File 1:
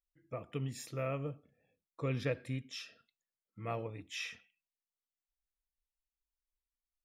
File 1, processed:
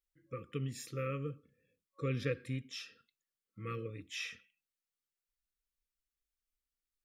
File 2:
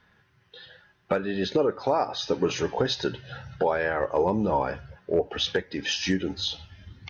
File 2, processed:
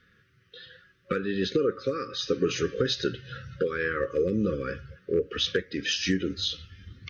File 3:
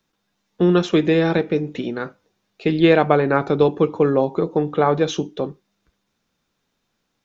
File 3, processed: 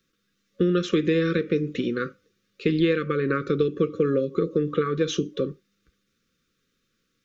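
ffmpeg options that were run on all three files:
-af "acompressor=threshold=0.126:ratio=6,afftfilt=real='re*(1-between(b*sr/4096,550,1100))':imag='im*(1-between(b*sr/4096,550,1100))':win_size=4096:overlap=0.75"

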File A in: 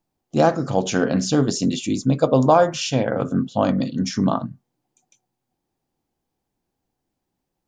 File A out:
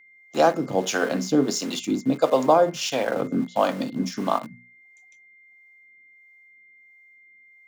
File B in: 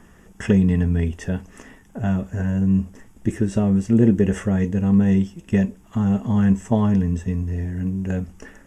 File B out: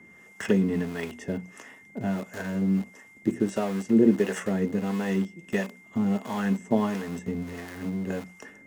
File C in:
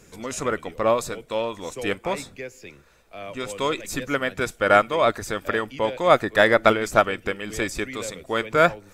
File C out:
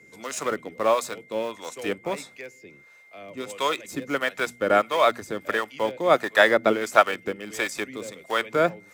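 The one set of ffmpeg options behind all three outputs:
-filter_complex "[0:a]asplit=2[s0][s1];[s1]aeval=exprs='val(0)*gte(abs(val(0)),0.0562)':c=same,volume=0.447[s2];[s0][s2]amix=inputs=2:normalize=0,highpass=150,bandreject=f=60:t=h:w=6,bandreject=f=120:t=h:w=6,bandreject=f=180:t=h:w=6,bandreject=f=240:t=h:w=6,acrossover=split=200[s3][s4];[s3]acompressor=threshold=0.0141:ratio=6[s5];[s5][s4]amix=inputs=2:normalize=0,acrossover=split=520[s6][s7];[s6]aeval=exprs='val(0)*(1-0.7/2+0.7/2*cos(2*PI*1.5*n/s))':c=same[s8];[s7]aeval=exprs='val(0)*(1-0.7/2-0.7/2*cos(2*PI*1.5*n/s))':c=same[s9];[s8][s9]amix=inputs=2:normalize=0,aeval=exprs='val(0)+0.00316*sin(2*PI*2100*n/s)':c=same,volume=0.891"

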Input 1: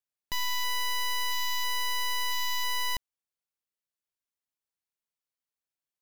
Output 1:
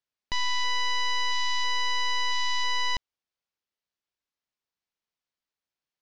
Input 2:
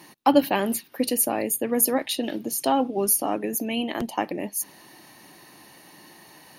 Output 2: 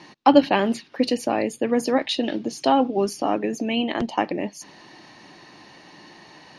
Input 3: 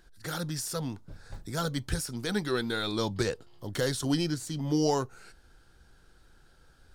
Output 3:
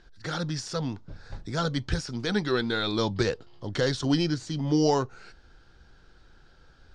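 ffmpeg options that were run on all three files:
-af "lowpass=f=5900:w=0.5412,lowpass=f=5900:w=1.3066,volume=1.5"

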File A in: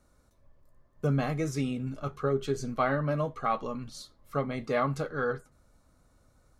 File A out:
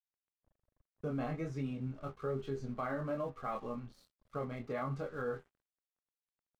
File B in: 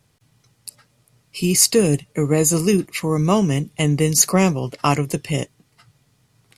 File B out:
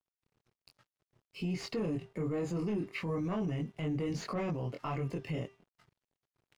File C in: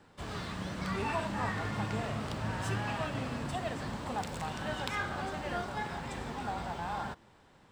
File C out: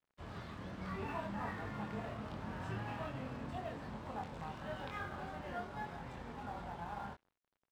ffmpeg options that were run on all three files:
-filter_complex "[0:a]flanger=delay=22.5:depth=2.5:speed=1.2,highshelf=f=9500:g=-5,bandreject=f=394.1:t=h:w=4,bandreject=f=788.2:t=h:w=4,bandreject=f=1182.3:t=h:w=4,bandreject=f=1576.4:t=h:w=4,bandreject=f=1970.5:t=h:w=4,bandreject=f=2364.6:t=h:w=4,bandreject=f=2758.7:t=h:w=4,bandreject=f=3152.8:t=h:w=4,bandreject=f=3546.9:t=h:w=4,bandreject=f=3941:t=h:w=4,bandreject=f=4335.1:t=h:w=4,bandreject=f=4729.2:t=h:w=4,bandreject=f=5123.3:t=h:w=4,bandreject=f=5517.4:t=h:w=4,bandreject=f=5911.5:t=h:w=4,asoftclip=type=tanh:threshold=0.168,aemphasis=mode=reproduction:type=75kf,acrossover=split=4500[s0][s1];[s1]acompressor=threshold=0.00112:ratio=4:attack=1:release=60[s2];[s0][s2]amix=inputs=2:normalize=0,aeval=exprs='sgn(val(0))*max(abs(val(0))-0.00126,0)':c=same,alimiter=level_in=1.19:limit=0.0631:level=0:latency=1:release=51,volume=0.841,volume=0.708"

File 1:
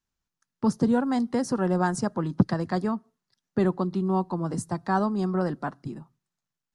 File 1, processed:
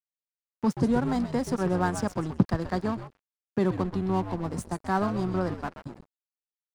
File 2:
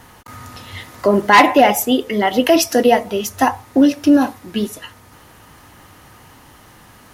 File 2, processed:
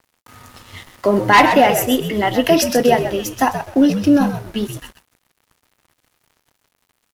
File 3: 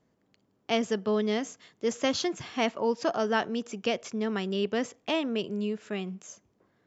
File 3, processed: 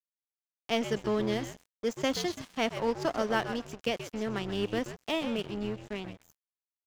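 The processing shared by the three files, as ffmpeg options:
-filter_complex "[0:a]asplit=5[s0][s1][s2][s3][s4];[s1]adelay=129,afreqshift=-86,volume=0.376[s5];[s2]adelay=258,afreqshift=-172,volume=0.112[s6];[s3]adelay=387,afreqshift=-258,volume=0.0339[s7];[s4]adelay=516,afreqshift=-344,volume=0.0101[s8];[s0][s5][s6][s7][s8]amix=inputs=5:normalize=0,aeval=exprs='sgn(val(0))*max(abs(val(0))-0.0126,0)':c=same,volume=0.891"

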